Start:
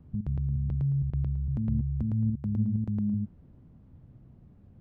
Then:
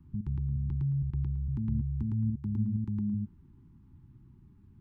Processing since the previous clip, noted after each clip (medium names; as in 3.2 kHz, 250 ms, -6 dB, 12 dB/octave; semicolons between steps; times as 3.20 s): Chebyshev band-stop 400–820 Hz, order 5; trim -2 dB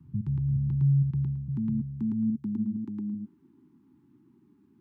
high-pass sweep 120 Hz -> 290 Hz, 0.63–2.99 s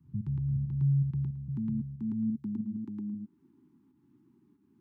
volume shaper 92 bpm, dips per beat 1, -7 dB, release 209 ms; trim -3.5 dB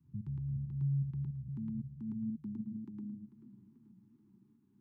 modulated delay 438 ms, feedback 60%, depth 148 cents, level -16.5 dB; trim -7 dB